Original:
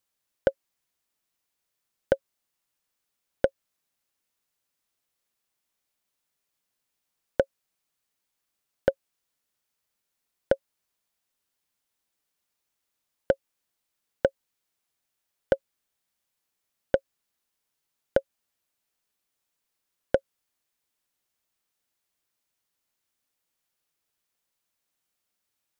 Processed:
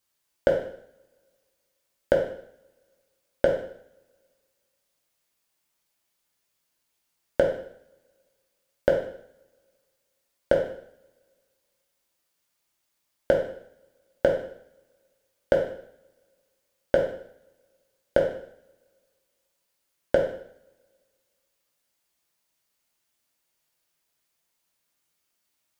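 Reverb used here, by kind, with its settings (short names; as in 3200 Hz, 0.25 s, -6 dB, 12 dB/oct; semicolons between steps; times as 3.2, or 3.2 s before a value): two-slope reverb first 0.63 s, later 2 s, from -28 dB, DRR -1.5 dB; gain +1 dB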